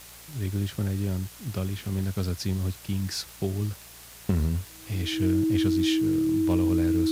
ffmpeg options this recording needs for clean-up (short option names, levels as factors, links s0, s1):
-af "adeclick=t=4,bandreject=f=57.5:t=h:w=4,bandreject=f=115:t=h:w=4,bandreject=f=172.5:t=h:w=4,bandreject=f=320:w=30,afwtdn=0.005"